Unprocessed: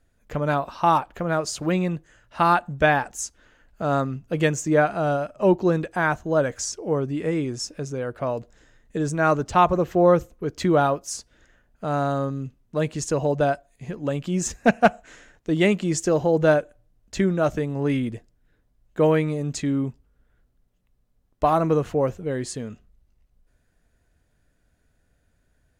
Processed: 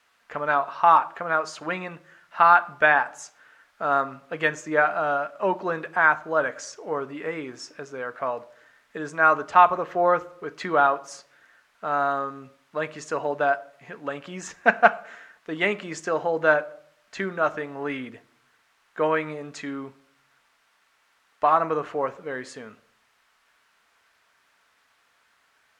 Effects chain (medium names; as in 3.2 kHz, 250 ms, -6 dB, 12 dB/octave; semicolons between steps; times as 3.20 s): word length cut 10-bit, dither triangular; band-pass filter 1.4 kHz, Q 1.3; reverberation RT60 0.60 s, pre-delay 4 ms, DRR 10.5 dB; trim +5.5 dB